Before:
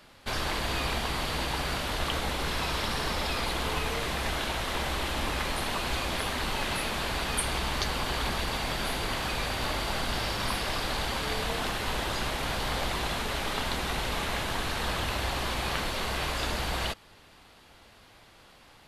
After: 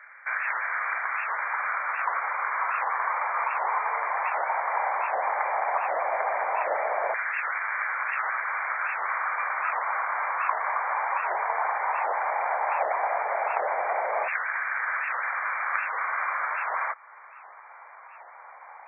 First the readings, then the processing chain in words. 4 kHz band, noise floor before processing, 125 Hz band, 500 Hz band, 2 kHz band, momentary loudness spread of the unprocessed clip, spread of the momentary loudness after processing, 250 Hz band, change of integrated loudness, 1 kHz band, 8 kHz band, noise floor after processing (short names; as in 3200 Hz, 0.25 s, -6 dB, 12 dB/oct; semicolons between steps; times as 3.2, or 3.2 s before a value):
under -40 dB, -56 dBFS, under -40 dB, +2.0 dB, +5.5 dB, 1 LU, 3 LU, under -25 dB, +3.0 dB, +8.0 dB, under -40 dB, -48 dBFS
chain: LFO high-pass saw down 0.14 Hz 620–1600 Hz; FFT band-pass 100–2400 Hz; in parallel at +1 dB: compressor, threshold -43 dBFS, peak gain reduction 18.5 dB; on the sum: resonant low shelf 380 Hz -12.5 dB, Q 1.5; record warp 78 rpm, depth 250 cents